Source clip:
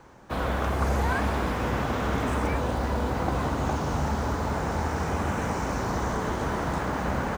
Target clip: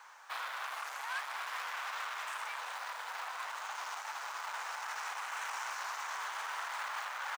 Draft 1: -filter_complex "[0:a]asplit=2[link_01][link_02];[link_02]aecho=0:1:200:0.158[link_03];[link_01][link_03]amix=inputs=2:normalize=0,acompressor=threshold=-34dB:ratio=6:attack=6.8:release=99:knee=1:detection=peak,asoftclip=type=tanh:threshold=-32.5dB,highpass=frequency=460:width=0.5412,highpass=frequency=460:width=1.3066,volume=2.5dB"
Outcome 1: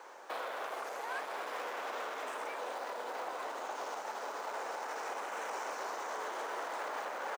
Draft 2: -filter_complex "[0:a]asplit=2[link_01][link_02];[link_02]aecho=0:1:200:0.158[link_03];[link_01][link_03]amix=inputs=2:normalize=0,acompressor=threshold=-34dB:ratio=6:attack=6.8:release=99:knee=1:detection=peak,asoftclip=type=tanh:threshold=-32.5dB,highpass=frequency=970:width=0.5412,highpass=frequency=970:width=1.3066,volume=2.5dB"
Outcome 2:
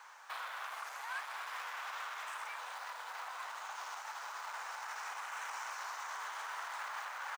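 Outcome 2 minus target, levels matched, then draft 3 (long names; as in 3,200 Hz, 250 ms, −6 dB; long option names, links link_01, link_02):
downward compressor: peak gain reduction +5.5 dB
-filter_complex "[0:a]asplit=2[link_01][link_02];[link_02]aecho=0:1:200:0.158[link_03];[link_01][link_03]amix=inputs=2:normalize=0,acompressor=threshold=-27.5dB:ratio=6:attack=6.8:release=99:knee=1:detection=peak,asoftclip=type=tanh:threshold=-32.5dB,highpass=frequency=970:width=0.5412,highpass=frequency=970:width=1.3066,volume=2.5dB"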